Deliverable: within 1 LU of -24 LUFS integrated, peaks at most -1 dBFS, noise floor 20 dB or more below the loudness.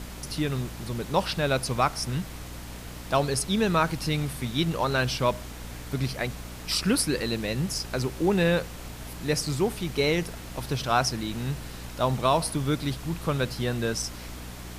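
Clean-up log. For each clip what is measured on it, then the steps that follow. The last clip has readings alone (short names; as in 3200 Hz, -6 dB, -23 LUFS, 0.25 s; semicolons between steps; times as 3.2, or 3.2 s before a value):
hum 60 Hz; harmonics up to 300 Hz; hum level -39 dBFS; noise floor -40 dBFS; noise floor target -48 dBFS; loudness -27.5 LUFS; peak -9.0 dBFS; loudness target -24.0 LUFS
-> notches 60/120/180/240/300 Hz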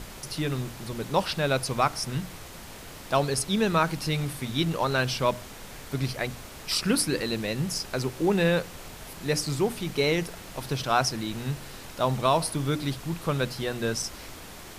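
hum none; noise floor -43 dBFS; noise floor target -48 dBFS
-> noise print and reduce 6 dB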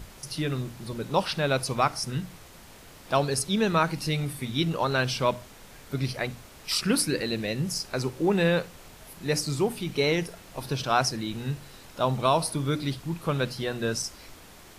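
noise floor -49 dBFS; loudness -27.5 LUFS; peak -9.0 dBFS; loudness target -24.0 LUFS
-> gain +3.5 dB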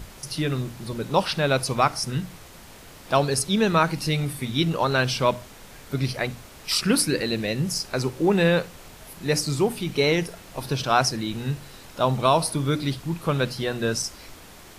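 loudness -24.0 LUFS; peak -5.5 dBFS; noise floor -46 dBFS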